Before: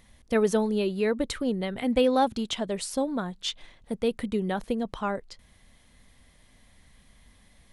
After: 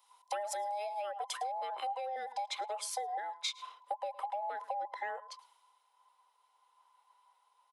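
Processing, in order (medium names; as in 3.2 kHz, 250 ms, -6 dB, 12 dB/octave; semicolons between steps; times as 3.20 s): every band turned upside down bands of 1 kHz; high-pass 550 Hz 24 dB/octave; treble shelf 2.9 kHz +3.5 dB, from 1.37 s -5 dB; delay 110 ms -22 dB; peak limiter -22.5 dBFS, peak gain reduction 9 dB; compression 12:1, threshold -38 dBFS, peak gain reduction 13 dB; dynamic bell 1 kHz, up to +4 dB, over -52 dBFS, Q 0.73; three bands expanded up and down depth 70%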